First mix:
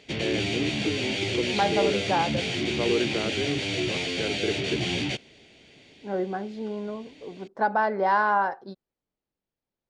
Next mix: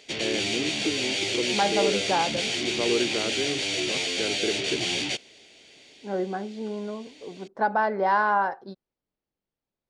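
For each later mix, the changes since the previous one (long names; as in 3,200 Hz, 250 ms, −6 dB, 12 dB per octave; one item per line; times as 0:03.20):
background: add bass and treble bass −11 dB, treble +9 dB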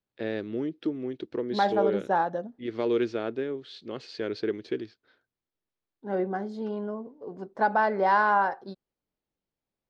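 background: muted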